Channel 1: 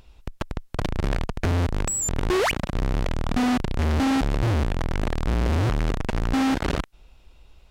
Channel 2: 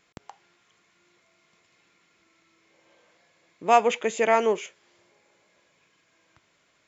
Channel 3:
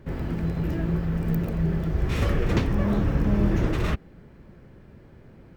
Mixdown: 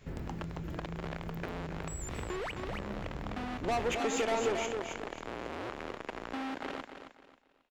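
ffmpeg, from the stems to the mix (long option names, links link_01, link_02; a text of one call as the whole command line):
ffmpeg -i stem1.wav -i stem2.wav -i stem3.wav -filter_complex "[0:a]acrossover=split=270 3900:gain=0.0708 1 0.251[link_01][link_02][link_03];[link_01][link_02][link_03]amix=inputs=3:normalize=0,volume=-6.5dB,asplit=2[link_04][link_05];[link_05]volume=-13.5dB[link_06];[1:a]acompressor=threshold=-25dB:ratio=3,asoftclip=type=tanh:threshold=-28.5dB,volume=1dB,asplit=2[link_07][link_08];[link_08]volume=-5.5dB[link_09];[2:a]acompressor=threshold=-27dB:ratio=6,volume=-7.5dB[link_10];[link_04][link_10]amix=inputs=2:normalize=0,agate=range=-12dB:threshold=-60dB:ratio=16:detection=peak,acompressor=threshold=-35dB:ratio=6,volume=0dB[link_11];[link_06][link_09]amix=inputs=2:normalize=0,aecho=0:1:270|540|810|1080:1|0.3|0.09|0.027[link_12];[link_07][link_11][link_12]amix=inputs=3:normalize=0" out.wav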